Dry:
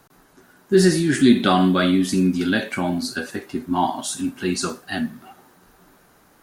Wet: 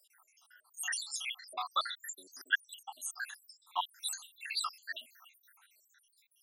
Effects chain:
time-frequency cells dropped at random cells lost 84%
Bessel high-pass filter 1,500 Hz, order 4

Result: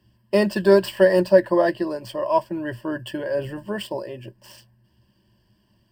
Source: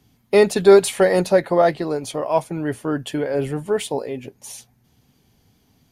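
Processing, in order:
running median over 5 samples
EQ curve with evenly spaced ripples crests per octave 1.3, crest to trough 16 dB
level −5 dB

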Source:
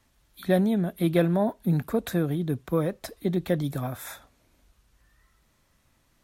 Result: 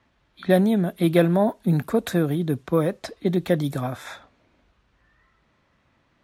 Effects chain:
low-pass that shuts in the quiet parts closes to 2,900 Hz, open at −22.5 dBFS
high-pass filter 120 Hz 6 dB per octave
level +5 dB

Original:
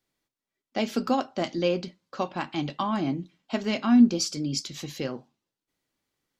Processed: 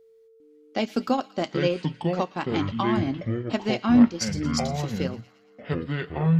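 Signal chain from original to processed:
steady tone 450 Hz −53 dBFS
transient designer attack +2 dB, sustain −8 dB
delay with a high-pass on its return 114 ms, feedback 54%, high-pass 1,600 Hz, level −17 dB
delay with pitch and tempo change per echo 401 ms, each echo −7 semitones, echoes 2

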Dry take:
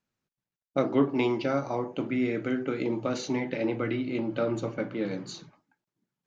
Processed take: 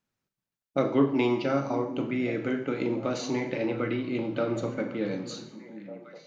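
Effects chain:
echo through a band-pass that steps 750 ms, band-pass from 220 Hz, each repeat 1.4 octaves, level −10 dB
four-comb reverb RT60 0.66 s, combs from 29 ms, DRR 8 dB

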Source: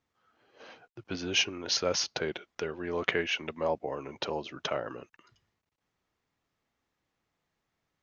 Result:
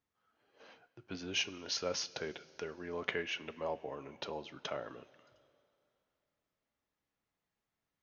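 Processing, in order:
coupled-rooms reverb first 0.21 s, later 2.8 s, from −18 dB, DRR 11.5 dB
level −8 dB

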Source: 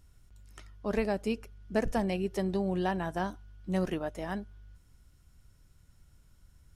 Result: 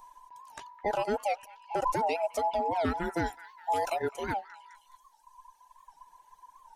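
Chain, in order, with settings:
frequency inversion band by band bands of 1,000 Hz
reverb reduction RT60 1.9 s
0:03.26–0:04.02: high-shelf EQ 3,500 Hz +9 dB
brickwall limiter −25.5 dBFS, peak gain reduction 10.5 dB
echo through a band-pass that steps 209 ms, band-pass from 1,500 Hz, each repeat 0.7 octaves, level −12 dB
wow of a warped record 78 rpm, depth 160 cents
level +5.5 dB

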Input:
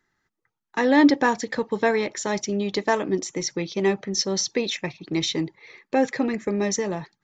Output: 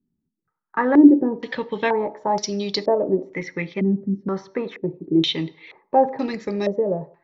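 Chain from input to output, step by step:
on a send at −12.5 dB: convolution reverb RT60 0.55 s, pre-delay 3 ms
on the sum: low-pass on a step sequencer 2.1 Hz 240–4,800 Hz
level −2 dB

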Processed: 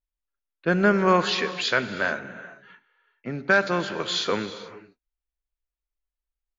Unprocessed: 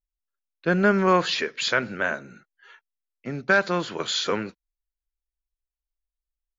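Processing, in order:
low-pass that shuts in the quiet parts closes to 2,900 Hz, open at −16.5 dBFS
reverb whose tail is shaped and stops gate 460 ms flat, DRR 11.5 dB

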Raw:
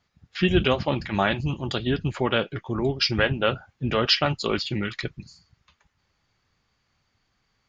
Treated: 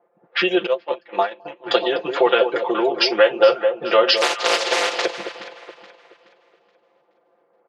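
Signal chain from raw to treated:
0:04.16–0:05.04: compressing power law on the bin magnitudes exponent 0.11
downward compressor 4 to 1, threshold −34 dBFS, peak gain reduction 16.5 dB
low-pass that shuts in the quiet parts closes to 560 Hz, open at −32 dBFS
high-frequency loss of the air 71 metres
delay that swaps between a low-pass and a high-pass 212 ms, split 1,000 Hz, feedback 59%, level −7.5 dB
0:00.66–0:01.68: noise gate −32 dBFS, range −25 dB
four-pole ladder high-pass 430 Hz, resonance 50%
notch filter 580 Hz, Q 19
comb filter 5.8 ms, depth 83%
low-pass that shuts in the quiet parts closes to 3,000 Hz, open at −36 dBFS
boost into a limiter +26.5 dB
level −1 dB

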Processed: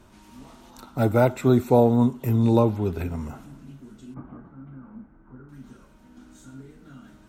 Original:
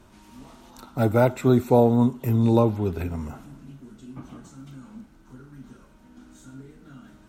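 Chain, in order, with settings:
0:04.14–0:05.49: low-pass filter 1,700 Hz 24 dB per octave

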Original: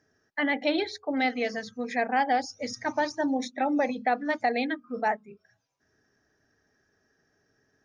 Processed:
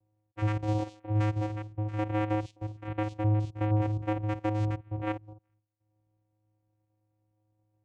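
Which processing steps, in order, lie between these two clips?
spectrum averaged block by block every 50 ms
low-pass that shuts in the quiet parts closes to 680 Hz, open at −23 dBFS
channel vocoder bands 4, square 106 Hz

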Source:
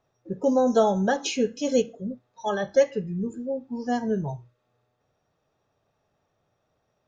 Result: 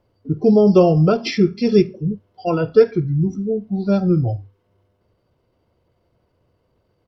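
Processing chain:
low-shelf EQ 470 Hz +8 dB
pitch shifter −3.5 semitones
level +4 dB

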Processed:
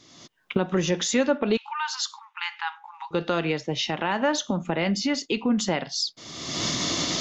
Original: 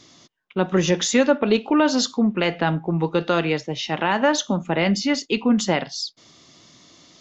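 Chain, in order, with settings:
camcorder AGC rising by 39 dB per second
0:01.57–0:03.11: linear-phase brick-wall high-pass 800 Hz
level −5 dB

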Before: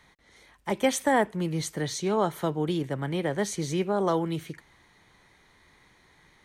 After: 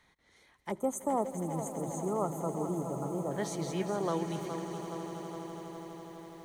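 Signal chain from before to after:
mains-hum notches 50/100/150 Hz
gain on a spectral selection 0:00.71–0:03.32, 1,400–6,200 Hz −26 dB
echo that builds up and dies away 82 ms, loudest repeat 8, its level −17 dB
feedback echo at a low word length 416 ms, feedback 55%, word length 8 bits, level −10 dB
level −7.5 dB

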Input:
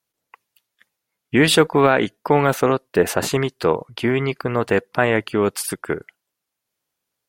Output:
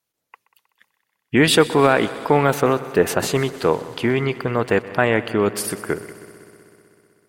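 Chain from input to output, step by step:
echo machine with several playback heads 63 ms, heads second and third, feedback 70%, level −19 dB

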